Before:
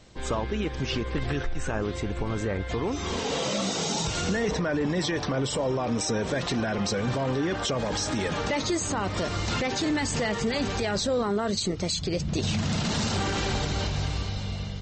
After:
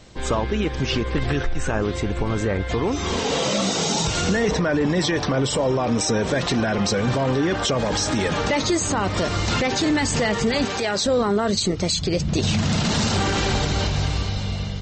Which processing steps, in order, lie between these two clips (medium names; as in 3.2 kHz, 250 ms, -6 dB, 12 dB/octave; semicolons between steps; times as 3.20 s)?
10.65–11.06 s: high-pass 340 Hz 6 dB/octave; trim +6 dB